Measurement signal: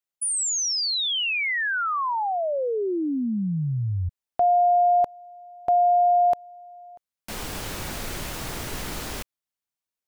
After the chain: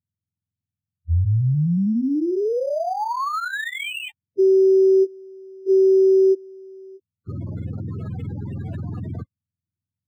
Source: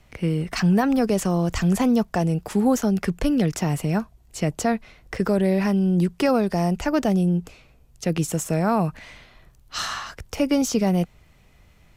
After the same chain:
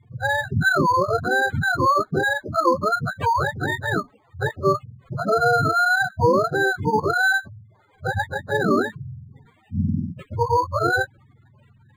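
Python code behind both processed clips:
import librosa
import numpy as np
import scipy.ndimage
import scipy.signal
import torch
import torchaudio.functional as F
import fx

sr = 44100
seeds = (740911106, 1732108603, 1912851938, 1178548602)

y = fx.octave_mirror(x, sr, pivot_hz=520.0)
y = fx.spec_gate(y, sr, threshold_db=-15, keep='strong')
y = np.interp(np.arange(len(y)), np.arange(len(y))[::8], y[::8])
y = y * librosa.db_to_amplitude(4.5)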